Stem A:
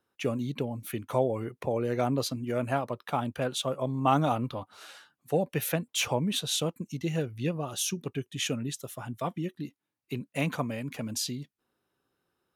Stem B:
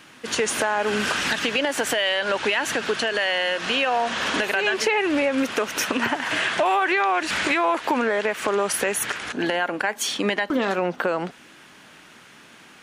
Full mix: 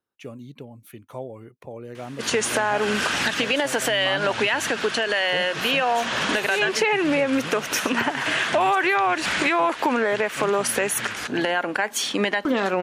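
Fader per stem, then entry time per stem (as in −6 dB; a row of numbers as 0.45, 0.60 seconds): −8.0, +0.5 decibels; 0.00, 1.95 seconds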